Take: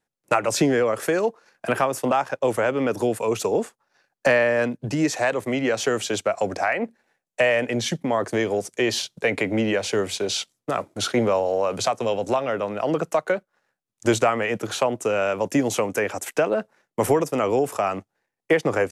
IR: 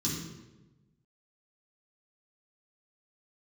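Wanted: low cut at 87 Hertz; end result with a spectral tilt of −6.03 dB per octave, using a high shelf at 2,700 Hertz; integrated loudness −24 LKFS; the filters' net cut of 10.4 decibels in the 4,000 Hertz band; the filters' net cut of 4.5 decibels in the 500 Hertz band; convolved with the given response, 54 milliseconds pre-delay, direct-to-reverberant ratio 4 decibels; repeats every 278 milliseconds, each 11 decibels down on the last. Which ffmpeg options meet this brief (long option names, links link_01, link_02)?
-filter_complex "[0:a]highpass=87,equalizer=frequency=500:width_type=o:gain=-5,highshelf=frequency=2700:gain=-8,equalizer=frequency=4000:width_type=o:gain=-7,aecho=1:1:278|556|834:0.282|0.0789|0.0221,asplit=2[link_01][link_02];[1:a]atrim=start_sample=2205,adelay=54[link_03];[link_02][link_03]afir=irnorm=-1:irlink=0,volume=-8dB[link_04];[link_01][link_04]amix=inputs=2:normalize=0,volume=-3.5dB"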